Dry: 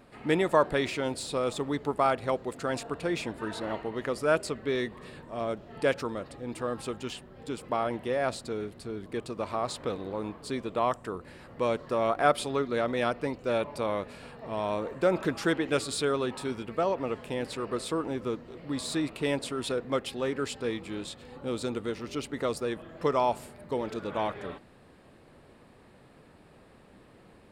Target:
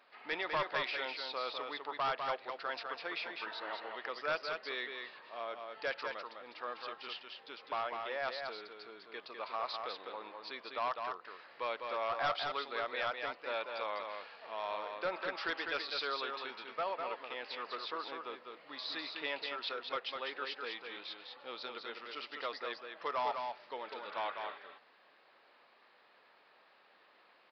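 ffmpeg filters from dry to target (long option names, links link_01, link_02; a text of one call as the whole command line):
ffmpeg -i in.wav -af "highpass=920,aresample=11025,asoftclip=type=hard:threshold=-26.5dB,aresample=44100,aecho=1:1:202:0.562,volume=-2.5dB" out.wav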